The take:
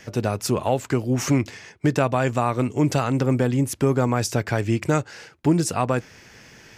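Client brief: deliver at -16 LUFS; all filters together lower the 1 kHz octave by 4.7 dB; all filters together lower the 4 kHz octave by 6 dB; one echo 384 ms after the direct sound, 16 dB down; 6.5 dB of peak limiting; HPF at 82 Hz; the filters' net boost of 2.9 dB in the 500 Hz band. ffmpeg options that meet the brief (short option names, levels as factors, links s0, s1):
-af "highpass=82,equalizer=f=500:t=o:g=6,equalizer=f=1000:t=o:g=-9,equalizer=f=4000:t=o:g=-8.5,alimiter=limit=0.237:level=0:latency=1,aecho=1:1:384:0.158,volume=2.66"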